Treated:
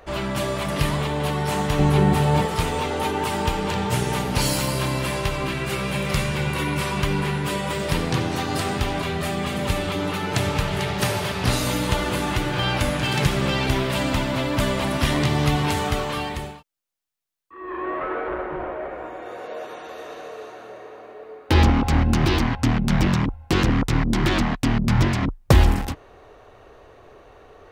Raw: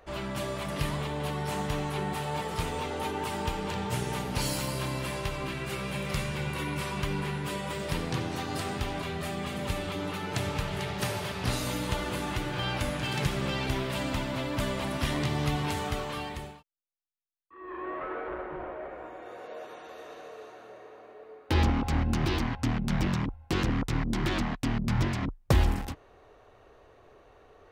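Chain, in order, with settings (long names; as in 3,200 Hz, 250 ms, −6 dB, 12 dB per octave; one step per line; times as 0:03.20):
0:01.79–0:02.46: low-shelf EQ 410 Hz +10 dB
level +8.5 dB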